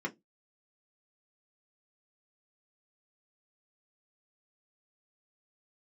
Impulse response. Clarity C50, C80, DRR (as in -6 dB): 23.0 dB, 33.0 dB, -1.5 dB